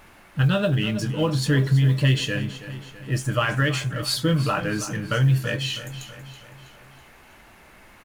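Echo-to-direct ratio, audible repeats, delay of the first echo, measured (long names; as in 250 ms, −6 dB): −12.0 dB, 4, 325 ms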